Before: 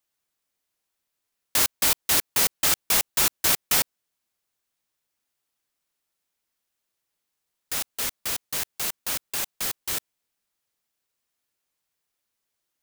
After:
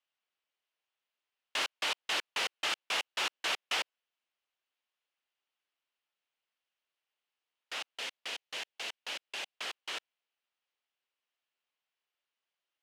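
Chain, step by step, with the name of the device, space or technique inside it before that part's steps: intercom (band-pass 480–3600 Hz; peaking EQ 2.9 kHz +6.5 dB 0.45 oct; saturation -18 dBFS, distortion -20 dB); 7.94–9.56 s: dynamic bell 1.2 kHz, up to -6 dB, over -51 dBFS, Q 2; trim -4.5 dB

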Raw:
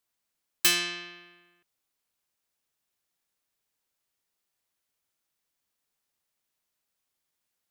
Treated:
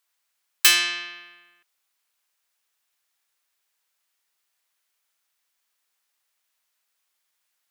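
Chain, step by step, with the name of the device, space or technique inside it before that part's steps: filter by subtraction (in parallel: low-pass 1.5 kHz 12 dB/octave + polarity flip); on the sum: trim +6 dB

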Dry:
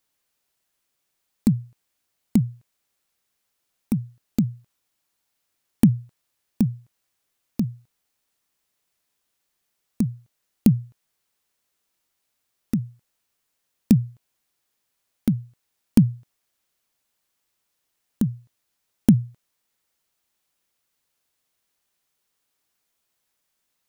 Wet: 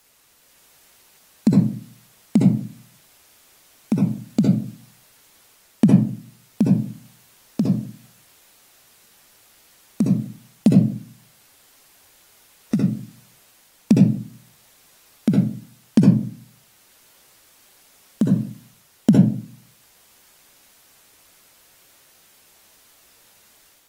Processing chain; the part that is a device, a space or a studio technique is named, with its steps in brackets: filmed off a television (band-pass 170–7400 Hz; peaking EQ 620 Hz +7 dB 0.59 oct; reverberation RT60 0.40 s, pre-delay 58 ms, DRR -1.5 dB; white noise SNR 32 dB; level rider gain up to 4 dB; AAC 48 kbps 48 kHz)

